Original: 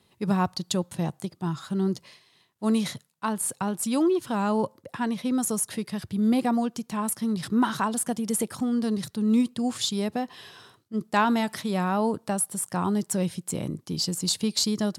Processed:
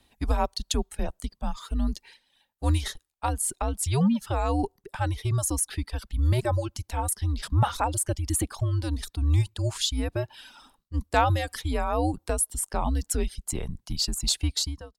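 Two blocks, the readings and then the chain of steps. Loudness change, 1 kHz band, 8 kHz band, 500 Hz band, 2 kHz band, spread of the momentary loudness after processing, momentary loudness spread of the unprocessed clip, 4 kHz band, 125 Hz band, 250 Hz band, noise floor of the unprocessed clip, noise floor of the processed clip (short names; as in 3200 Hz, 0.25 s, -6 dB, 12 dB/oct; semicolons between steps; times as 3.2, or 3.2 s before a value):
-1.0 dB, -0.5 dB, +0.5 dB, -2.5 dB, -1.5 dB, 10 LU, 9 LU, 0.0 dB, +7.0 dB, -7.5 dB, -66 dBFS, -76 dBFS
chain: ending faded out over 0.56 s; frequency shift -140 Hz; reverb removal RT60 0.88 s; gain +1 dB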